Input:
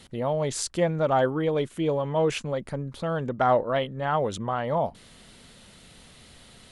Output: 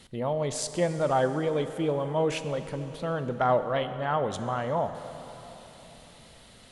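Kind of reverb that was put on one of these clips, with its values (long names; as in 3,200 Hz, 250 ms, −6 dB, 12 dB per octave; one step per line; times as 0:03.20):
dense smooth reverb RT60 4 s, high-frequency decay 0.8×, DRR 9 dB
level −2.5 dB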